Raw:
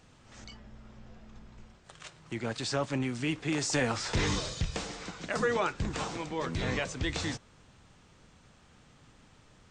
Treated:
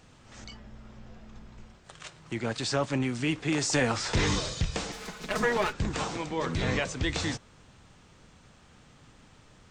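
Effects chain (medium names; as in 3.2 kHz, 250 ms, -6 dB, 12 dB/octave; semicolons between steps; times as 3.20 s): 4.92–5.73 s: comb filter that takes the minimum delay 4.7 ms; 6.27–6.81 s: flutter echo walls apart 10.5 m, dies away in 0.27 s; trim +3 dB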